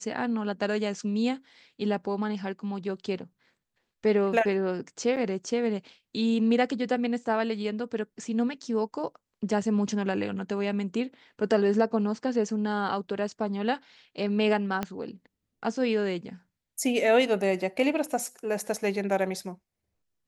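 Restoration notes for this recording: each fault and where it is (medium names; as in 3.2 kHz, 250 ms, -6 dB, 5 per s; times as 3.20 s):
5.16–5.17 s: dropout 6.9 ms
14.83 s: pop -15 dBFS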